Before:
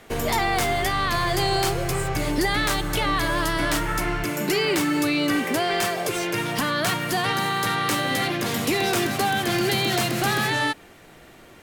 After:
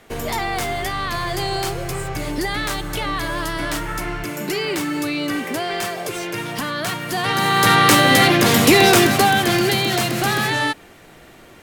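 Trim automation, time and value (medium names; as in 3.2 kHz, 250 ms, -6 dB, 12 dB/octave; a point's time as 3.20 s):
7.06 s -1 dB
7.72 s +11 dB
8.84 s +11 dB
9.86 s +3 dB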